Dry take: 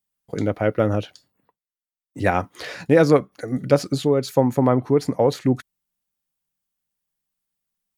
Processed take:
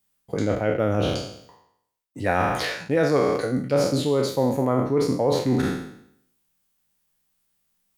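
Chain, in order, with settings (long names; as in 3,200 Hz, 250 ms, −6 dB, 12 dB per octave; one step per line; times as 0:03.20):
peak hold with a decay on every bin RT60 0.70 s
reversed playback
downward compressor 4 to 1, threshold −28 dBFS, peak gain reduction 16 dB
reversed playback
level +7.5 dB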